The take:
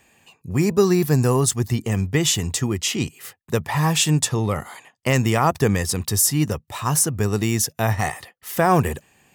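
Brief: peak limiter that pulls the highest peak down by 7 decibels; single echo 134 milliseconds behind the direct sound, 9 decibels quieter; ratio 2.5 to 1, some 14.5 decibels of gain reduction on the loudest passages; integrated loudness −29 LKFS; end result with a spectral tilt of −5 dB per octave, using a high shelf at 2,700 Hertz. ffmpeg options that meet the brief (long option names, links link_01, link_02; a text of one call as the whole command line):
ffmpeg -i in.wav -af "highshelf=frequency=2700:gain=-8,acompressor=threshold=-36dB:ratio=2.5,alimiter=level_in=2dB:limit=-24dB:level=0:latency=1,volume=-2dB,aecho=1:1:134:0.355,volume=7dB" out.wav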